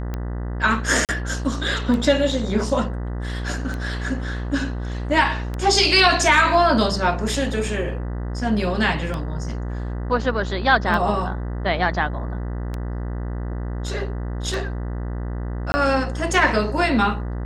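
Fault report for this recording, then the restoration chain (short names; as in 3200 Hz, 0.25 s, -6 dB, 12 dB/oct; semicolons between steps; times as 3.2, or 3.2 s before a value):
buzz 60 Hz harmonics 33 -27 dBFS
tick 33 1/3 rpm -15 dBFS
1.05–1.09 gap 38 ms
15.72–15.74 gap 20 ms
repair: de-click; de-hum 60 Hz, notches 33; interpolate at 1.05, 38 ms; interpolate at 15.72, 20 ms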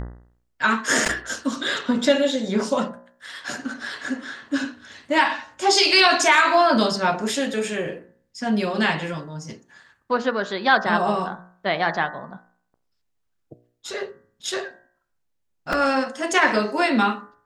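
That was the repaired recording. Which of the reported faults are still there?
none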